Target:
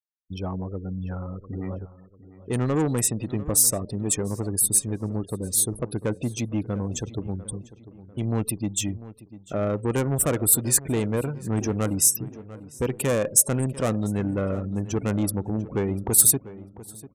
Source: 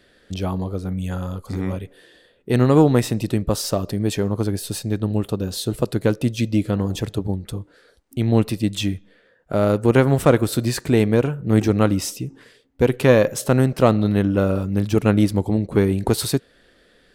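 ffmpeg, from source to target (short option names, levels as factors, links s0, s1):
-filter_complex "[0:a]afftfilt=real='re*gte(hypot(re,im),0.0282)':imag='im*gte(hypot(re,im),0.0282)':win_size=1024:overlap=0.75,asoftclip=type=tanh:threshold=0.237,aexciter=amount=8.5:drive=7.4:freq=6600,asplit=2[s0][s1];[s1]adelay=696,lowpass=f=2400:p=1,volume=0.158,asplit=2[s2][s3];[s3]adelay=696,lowpass=f=2400:p=1,volume=0.44,asplit=2[s4][s5];[s5]adelay=696,lowpass=f=2400:p=1,volume=0.44,asplit=2[s6][s7];[s7]adelay=696,lowpass=f=2400:p=1,volume=0.44[s8];[s2][s4][s6][s8]amix=inputs=4:normalize=0[s9];[s0][s9]amix=inputs=2:normalize=0,volume=0.531"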